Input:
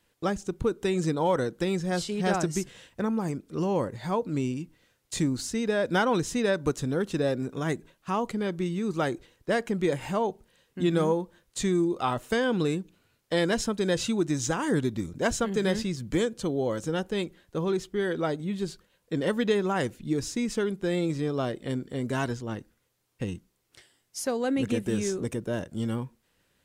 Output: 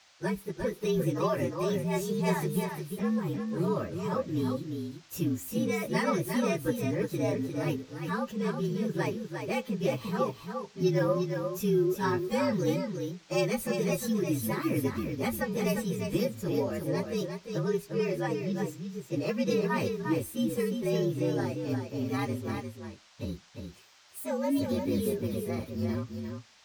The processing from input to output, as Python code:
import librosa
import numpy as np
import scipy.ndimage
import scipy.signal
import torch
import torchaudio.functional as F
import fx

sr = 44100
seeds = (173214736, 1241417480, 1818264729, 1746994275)

p1 = fx.partial_stretch(x, sr, pct=117)
p2 = fx.notch_comb(p1, sr, f0_hz=710.0)
p3 = fx.dmg_noise_band(p2, sr, seeds[0], low_hz=570.0, high_hz=6300.0, level_db=-61.0)
y = p3 + fx.echo_single(p3, sr, ms=352, db=-6.0, dry=0)